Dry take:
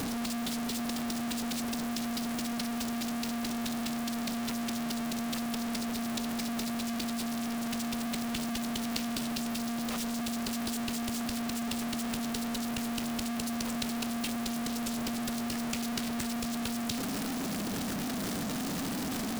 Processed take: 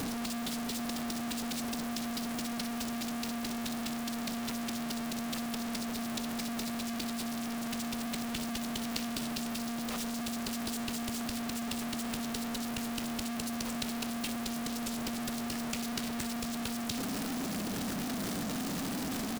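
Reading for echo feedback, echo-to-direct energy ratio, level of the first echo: 16%, −15.0 dB, −15.0 dB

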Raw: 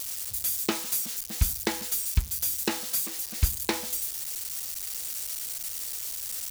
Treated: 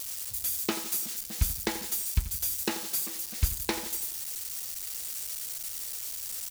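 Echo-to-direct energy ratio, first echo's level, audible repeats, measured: −11.5 dB, −13.0 dB, 4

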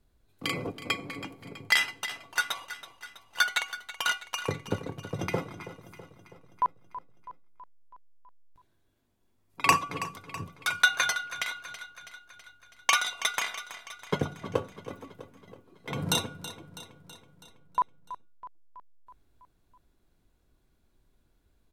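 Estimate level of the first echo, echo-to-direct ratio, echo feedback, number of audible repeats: −14.0 dB, −12.0 dB, 59%, 5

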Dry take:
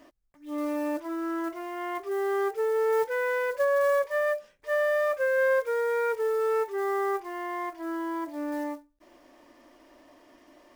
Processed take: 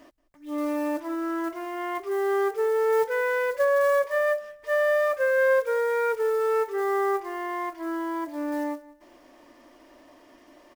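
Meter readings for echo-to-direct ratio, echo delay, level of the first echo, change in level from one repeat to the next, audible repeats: −19.5 dB, 180 ms, −20.0 dB, −11.0 dB, 2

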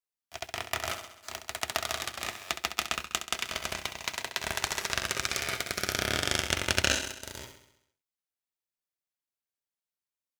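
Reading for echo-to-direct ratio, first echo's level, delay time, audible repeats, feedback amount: −8.5 dB, −10.5 dB, 66 ms, 6, 59%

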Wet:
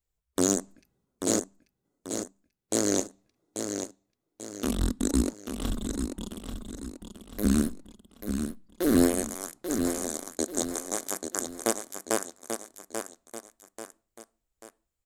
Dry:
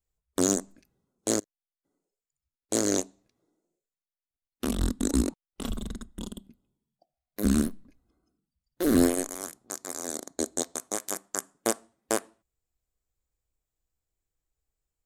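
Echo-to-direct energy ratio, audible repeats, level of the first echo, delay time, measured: −6.0 dB, 3, −7.0 dB, 838 ms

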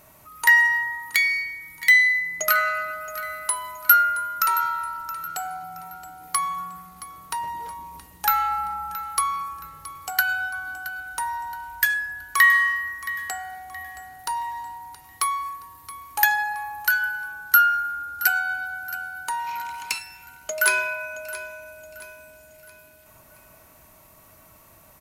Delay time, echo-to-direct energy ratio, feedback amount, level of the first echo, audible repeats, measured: 672 ms, −14.5 dB, 41%, −15.5 dB, 3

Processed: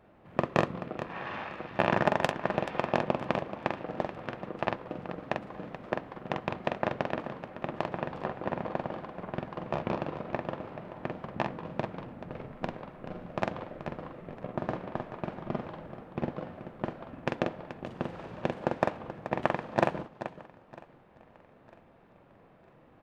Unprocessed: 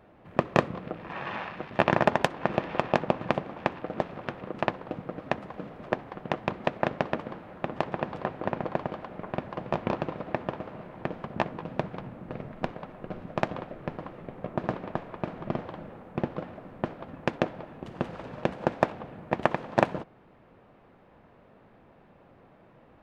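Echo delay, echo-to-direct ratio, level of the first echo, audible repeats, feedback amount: 45 ms, −3.5 dB, −4.5 dB, 5, repeats not evenly spaced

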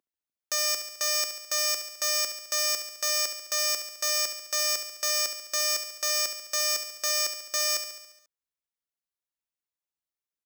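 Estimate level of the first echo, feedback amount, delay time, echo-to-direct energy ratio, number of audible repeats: −9.0 dB, 59%, 70 ms, −7.0 dB, 6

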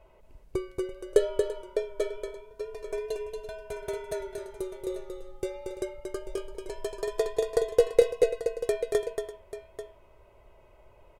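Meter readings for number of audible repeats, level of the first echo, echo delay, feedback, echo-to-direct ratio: 3, −5.5 dB, 231 ms, repeats not evenly spaced, −4.5 dB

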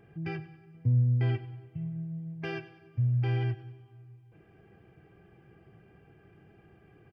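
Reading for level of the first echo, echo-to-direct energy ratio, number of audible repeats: −16.0 dB, −14.5 dB, 4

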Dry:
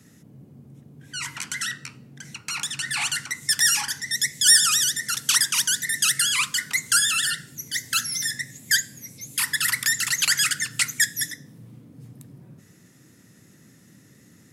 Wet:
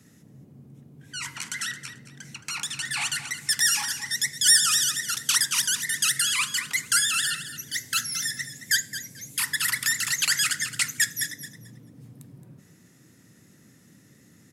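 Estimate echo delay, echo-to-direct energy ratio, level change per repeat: 220 ms, −12.0 dB, −13.5 dB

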